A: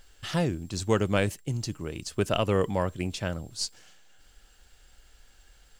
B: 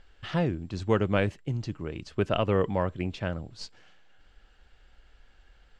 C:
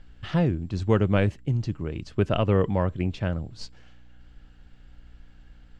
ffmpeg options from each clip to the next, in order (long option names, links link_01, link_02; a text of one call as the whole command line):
ffmpeg -i in.wav -af "lowpass=2900" out.wav
ffmpeg -i in.wav -af "lowshelf=frequency=250:gain=7.5,aeval=exprs='val(0)+0.002*(sin(2*PI*60*n/s)+sin(2*PI*2*60*n/s)/2+sin(2*PI*3*60*n/s)/3+sin(2*PI*4*60*n/s)/4+sin(2*PI*5*60*n/s)/5)':channel_layout=same" out.wav